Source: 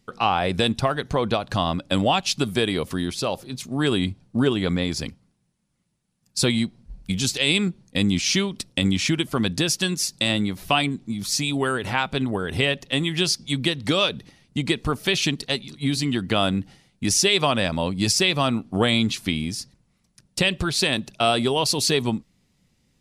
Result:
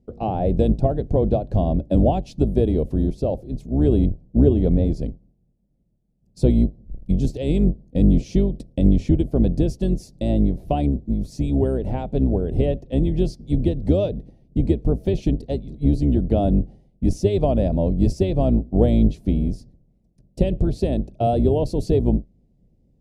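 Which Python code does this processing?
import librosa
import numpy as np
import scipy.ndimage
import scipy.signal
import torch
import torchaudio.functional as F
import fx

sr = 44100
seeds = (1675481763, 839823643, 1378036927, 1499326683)

y = fx.octave_divider(x, sr, octaves=2, level_db=1.0)
y = fx.wow_flutter(y, sr, seeds[0], rate_hz=2.1, depth_cents=25.0)
y = fx.curve_eq(y, sr, hz=(650.0, 1200.0, 2400.0), db=(0, -27, -25))
y = y * 10.0 ** (3.5 / 20.0)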